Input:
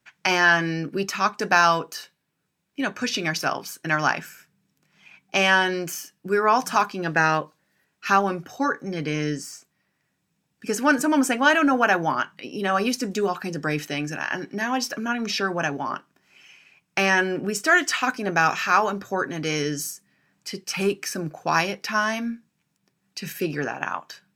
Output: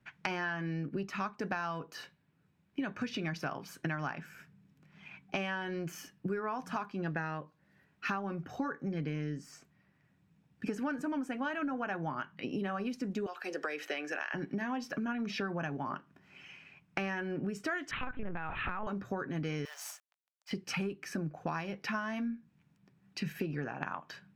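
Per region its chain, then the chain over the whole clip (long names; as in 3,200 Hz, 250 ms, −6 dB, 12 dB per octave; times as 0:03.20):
0:13.26–0:14.34: high-pass filter 440 Hz 24 dB per octave + parametric band 920 Hz −5.5 dB + multiband upward and downward compressor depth 70%
0:17.91–0:18.87: linear-prediction vocoder at 8 kHz pitch kept + downward compressor, threshold −20 dBFS + highs frequency-modulated by the lows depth 0.13 ms
0:19.65–0:20.51: log-companded quantiser 4 bits + Butterworth high-pass 610 Hz 48 dB per octave + volume swells 105 ms
whole clip: bass and treble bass +9 dB, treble −13 dB; downward compressor 10 to 1, threshold −33 dBFS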